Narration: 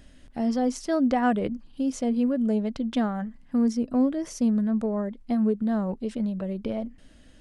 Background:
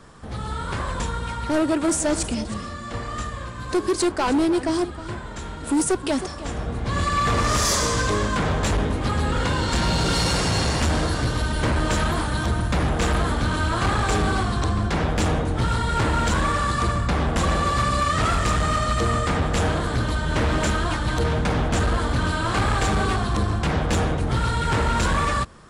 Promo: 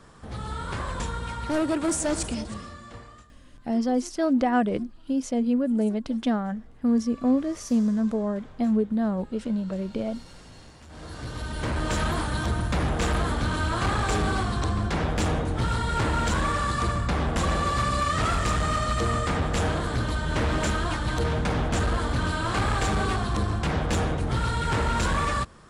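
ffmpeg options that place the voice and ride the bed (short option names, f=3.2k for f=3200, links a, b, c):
-filter_complex "[0:a]adelay=3300,volume=0.5dB[a];[1:a]volume=20dB,afade=t=out:st=2.31:d=0.96:silence=0.0668344,afade=t=in:st=10.88:d=1.19:silence=0.0630957[b];[a][b]amix=inputs=2:normalize=0"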